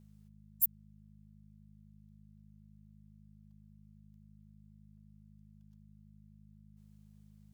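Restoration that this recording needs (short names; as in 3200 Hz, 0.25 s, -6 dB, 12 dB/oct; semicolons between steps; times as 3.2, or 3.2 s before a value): de-hum 51.9 Hz, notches 4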